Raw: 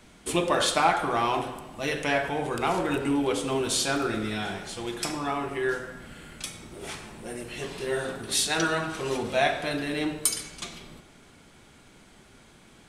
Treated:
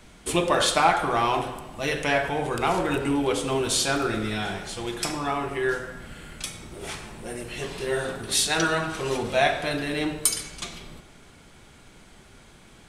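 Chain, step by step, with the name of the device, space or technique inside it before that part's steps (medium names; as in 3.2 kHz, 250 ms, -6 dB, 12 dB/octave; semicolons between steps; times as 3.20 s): low shelf boost with a cut just above (bass shelf 70 Hz +6 dB; peaking EQ 260 Hz -2.5 dB 0.77 oct); trim +2.5 dB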